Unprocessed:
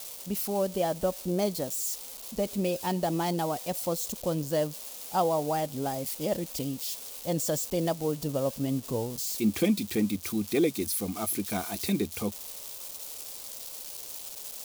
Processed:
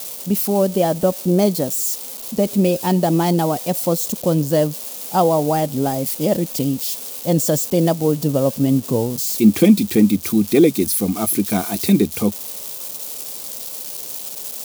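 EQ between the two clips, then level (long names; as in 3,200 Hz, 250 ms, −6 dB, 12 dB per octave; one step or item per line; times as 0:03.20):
high-pass filter 140 Hz 12 dB per octave
low-shelf EQ 360 Hz +10 dB
high-shelf EQ 8,800 Hz +4.5 dB
+7.5 dB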